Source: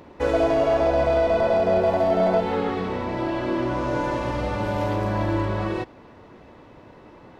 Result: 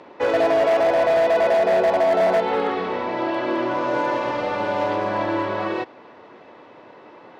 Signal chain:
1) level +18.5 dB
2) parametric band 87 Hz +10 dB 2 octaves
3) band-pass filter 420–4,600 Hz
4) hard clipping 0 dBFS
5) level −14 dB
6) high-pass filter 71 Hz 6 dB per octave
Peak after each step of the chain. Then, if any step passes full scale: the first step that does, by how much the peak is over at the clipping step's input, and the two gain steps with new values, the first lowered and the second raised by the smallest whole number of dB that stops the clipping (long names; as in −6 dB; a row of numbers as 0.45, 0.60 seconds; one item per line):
+9.0, +11.5, +8.0, 0.0, −14.0, −12.5 dBFS
step 1, 8.0 dB
step 1 +10.5 dB, step 5 −6 dB